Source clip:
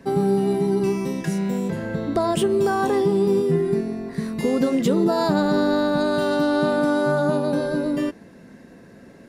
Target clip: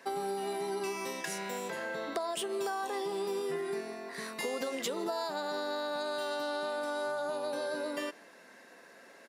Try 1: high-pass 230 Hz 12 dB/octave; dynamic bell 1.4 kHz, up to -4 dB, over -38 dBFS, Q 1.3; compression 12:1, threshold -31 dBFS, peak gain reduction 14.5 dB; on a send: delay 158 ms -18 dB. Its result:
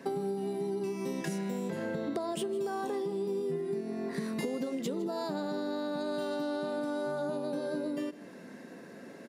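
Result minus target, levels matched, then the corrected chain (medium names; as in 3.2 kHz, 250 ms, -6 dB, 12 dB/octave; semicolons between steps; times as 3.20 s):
250 Hz band +7.0 dB; echo-to-direct +9.5 dB
high-pass 750 Hz 12 dB/octave; dynamic bell 1.4 kHz, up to -4 dB, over -38 dBFS, Q 1.3; compression 12:1, threshold -31 dBFS, peak gain reduction 9.5 dB; on a send: delay 158 ms -27.5 dB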